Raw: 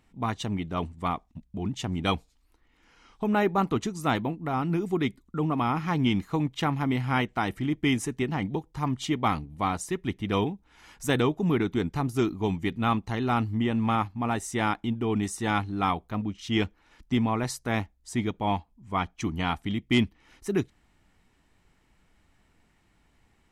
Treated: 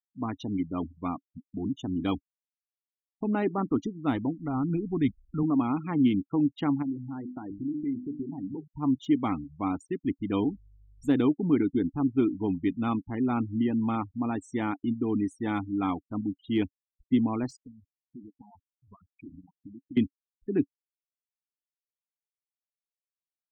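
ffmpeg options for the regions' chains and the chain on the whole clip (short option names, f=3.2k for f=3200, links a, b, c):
-filter_complex "[0:a]asettb=1/sr,asplit=3[a][b][c];[a]atrim=end=3.744[d];[b]atrim=start=3.74:end=5.43,asetpts=PTS-STARTPTS,afade=t=in:d=0.004:c=qsin,afade=t=out:st=1.686:d=0.004:c=qsin,lowpass=f=8k:w=0.5412,lowpass=f=8k:w=1.3066,asubboost=boost=10.5:cutoff=130[e];[c]atrim=start=5.426[f];[d][e]acrossfade=d=0.004:c1=hsin:c2=qsin[g];[g][f]acrossfade=d=0.004:c1=qsin:c2=hsin,asettb=1/sr,asplit=3[h][i][j];[h]atrim=end=6.824[k];[i]atrim=start=6.82:end=8.74,asetpts=PTS-STARTPTS,afade=t=in:d=0.004:c=qsin,afade=t=out:st=1.916:d=0.004:c=qsin,lowpass=f=1.2k:p=1,bandreject=f=50:t=h:w=6,bandreject=f=100:t=h:w=6,bandreject=f=150:t=h:w=6,bandreject=f=200:t=h:w=6,bandreject=f=250:t=h:w=6,bandreject=f=300:t=h:w=6,bandreject=f=350:t=h:w=6,bandreject=f=400:t=h:w=6,bandreject=f=450:t=h:w=6,acompressor=threshold=-32dB:ratio=6:attack=3.2:release=140:knee=1:detection=peak[l];[j]atrim=start=8.736[m];[k][l]acrossfade=d=0.004:c1=hsin:c2=qsin[n];[n][m]acrossfade=d=0.004:c1=qsin:c2=hsin,asettb=1/sr,asplit=3[o][p][q];[o]atrim=end=10.404[r];[p]atrim=start=10.4:end=11.11,asetpts=PTS-STARTPTS,afade=t=in:d=0.004:c=qsin,afade=t=out:st=0.706:d=0.004:c=qsin,equalizer=f=2.1k:t=o:w=1.1:g=-4,aeval=exprs='val(0)+0.00501*(sin(2*PI*50*n/s)+sin(2*PI*2*50*n/s)/2+sin(2*PI*3*50*n/s)/3+sin(2*PI*4*50*n/s)/4+sin(2*PI*5*50*n/s)/5)':c=same[s];[q]atrim=start=11.106[t];[r][s]acrossfade=d=0.004:c1=hsin:c2=qsin[u];[u][t]acrossfade=d=0.004:c1=qsin:c2=hsin,asettb=1/sr,asplit=3[v][w][x];[v]atrim=end=17.634[y];[w]atrim=start=17.63:end=19.97,asetpts=PTS-STARTPTS,afade=t=in:d=0.004:c=qsin,afade=t=out:st=2.336:d=0.004:c=qsin,tremolo=f=110:d=0.71,acompressor=threshold=-40dB:ratio=10:attack=3.2:release=140:knee=1:detection=peak[z];[x]atrim=start=19.966[aa];[y][z]acrossfade=d=0.004:c1=hsin:c2=qsin[ab];[ab][aa]acrossfade=d=0.004:c1=qsin:c2=hsin,afftfilt=real='re*gte(hypot(re,im),0.0316)':imag='im*gte(hypot(re,im),0.0316)':win_size=1024:overlap=0.75,deesser=0.95,equalizer=f=280:t=o:w=0.59:g=14.5,volume=-7dB"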